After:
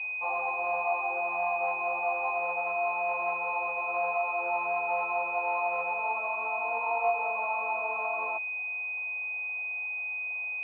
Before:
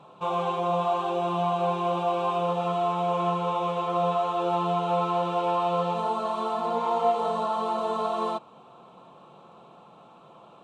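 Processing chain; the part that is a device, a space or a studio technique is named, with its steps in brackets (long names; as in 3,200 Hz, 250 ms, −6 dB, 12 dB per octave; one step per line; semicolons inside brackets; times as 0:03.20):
toy sound module (linearly interpolated sample-rate reduction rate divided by 8×; switching amplifier with a slow clock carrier 2,500 Hz; loudspeaker in its box 770–4,000 Hz, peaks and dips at 780 Hz +9 dB, 1,700 Hz −5 dB, 2,500 Hz +7 dB, 3,600 Hz −5 dB)
level −3.5 dB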